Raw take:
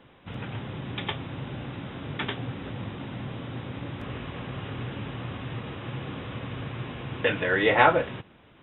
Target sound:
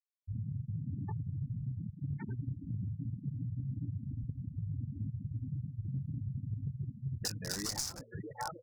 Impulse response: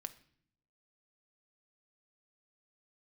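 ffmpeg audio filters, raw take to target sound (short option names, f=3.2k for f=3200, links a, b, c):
-filter_complex "[0:a]asplit=2[a][b];[b]aecho=0:1:600|1200|1800|2400|3000:0.299|0.146|0.0717|0.0351|0.0172[c];[a][c]amix=inputs=2:normalize=0,flanger=delay=18:depth=4.1:speed=2.6,afwtdn=0.0141,afftfilt=real='re*gte(hypot(re,im),0.0708)':imag='im*gte(hypot(re,im),0.0708)':win_size=1024:overlap=0.75,bandreject=f=680:w=12,bandreject=f=114.4:t=h:w=4,bandreject=f=228.8:t=h:w=4,aeval=exprs='0.0708*(abs(mod(val(0)/0.0708+3,4)-2)-1)':c=same,firequalizer=gain_entry='entry(120,0);entry(510,-22);entry(770,-11);entry(3000,-20);entry(5100,12)':delay=0.05:min_phase=1,acompressor=threshold=-41dB:ratio=12,volume=7.5dB"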